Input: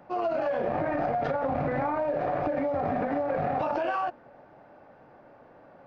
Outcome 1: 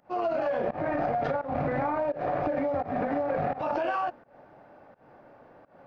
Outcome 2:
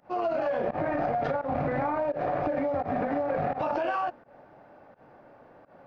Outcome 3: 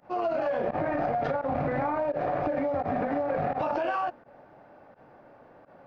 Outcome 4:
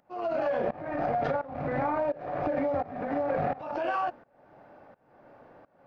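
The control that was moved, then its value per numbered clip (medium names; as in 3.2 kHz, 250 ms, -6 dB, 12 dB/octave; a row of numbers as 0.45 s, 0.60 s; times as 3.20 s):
volume shaper, release: 184 ms, 113 ms, 72 ms, 518 ms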